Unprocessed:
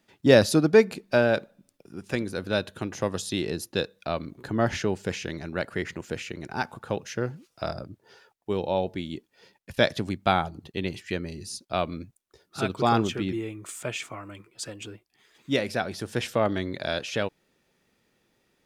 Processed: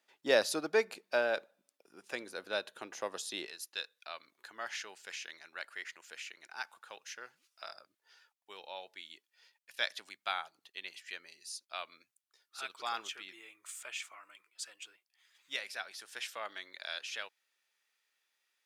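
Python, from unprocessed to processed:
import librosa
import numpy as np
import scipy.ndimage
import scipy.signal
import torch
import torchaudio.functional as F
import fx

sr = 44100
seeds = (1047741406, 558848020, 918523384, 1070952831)

y = fx.highpass(x, sr, hz=fx.steps((0.0, 580.0), (3.46, 1400.0)), slope=12)
y = y * 10.0 ** (-6.5 / 20.0)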